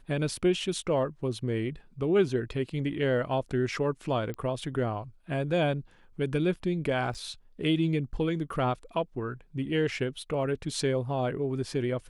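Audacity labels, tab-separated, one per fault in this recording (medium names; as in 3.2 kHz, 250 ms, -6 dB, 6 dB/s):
4.340000	4.340000	pop -25 dBFS
7.140000	7.150000	dropout 6.6 ms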